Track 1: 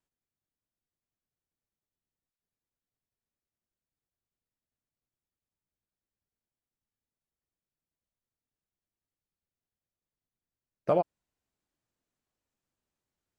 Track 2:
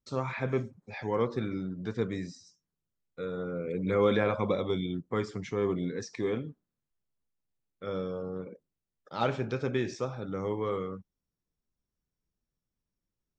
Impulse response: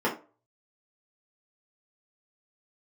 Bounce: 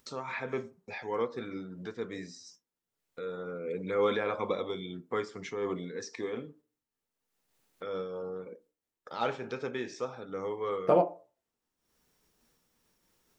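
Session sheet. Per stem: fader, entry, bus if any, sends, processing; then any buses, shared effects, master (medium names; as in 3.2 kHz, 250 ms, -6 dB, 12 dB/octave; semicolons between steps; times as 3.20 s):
+2.5 dB, 0.00 s, send -16 dB, none
+1.0 dB, 0.00 s, send -22.5 dB, gate with hold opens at -48 dBFS; bass shelf 290 Hz -9.5 dB; upward compressor, threshold -37 dBFS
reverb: on, RT60 0.35 s, pre-delay 3 ms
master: bass shelf 110 Hz -5.5 dB; random flutter of the level, depth 55%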